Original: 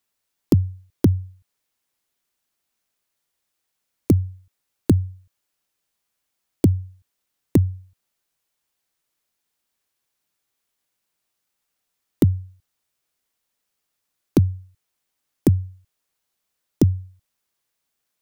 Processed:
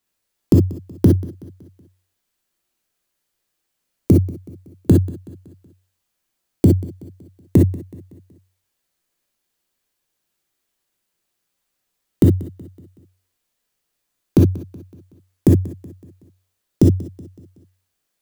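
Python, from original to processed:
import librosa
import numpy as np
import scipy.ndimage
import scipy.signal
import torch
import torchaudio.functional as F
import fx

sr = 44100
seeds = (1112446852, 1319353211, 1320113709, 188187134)

y = fx.low_shelf(x, sr, hz=400.0, db=5.0)
y = fx.echo_feedback(y, sr, ms=187, feedback_pct=48, wet_db=-19.5)
y = fx.rev_gated(y, sr, seeds[0], gate_ms=80, shape='rising', drr_db=0.5)
y = y * 10.0 ** (-1.0 / 20.0)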